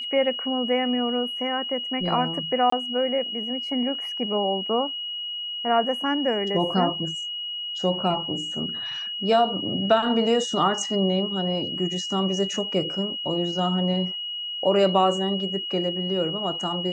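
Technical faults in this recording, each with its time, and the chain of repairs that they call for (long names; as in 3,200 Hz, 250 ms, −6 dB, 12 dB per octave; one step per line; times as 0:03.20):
whistle 2,900 Hz −29 dBFS
0:02.70–0:02.72: drop-out 24 ms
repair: notch filter 2,900 Hz, Q 30
repair the gap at 0:02.70, 24 ms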